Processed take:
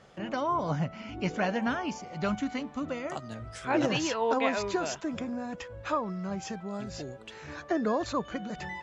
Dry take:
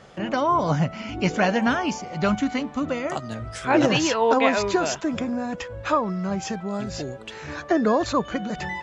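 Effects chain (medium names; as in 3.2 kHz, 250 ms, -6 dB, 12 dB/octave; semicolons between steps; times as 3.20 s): 0.53–1.96 s: treble shelf 5.3 kHz -5.5 dB; trim -8 dB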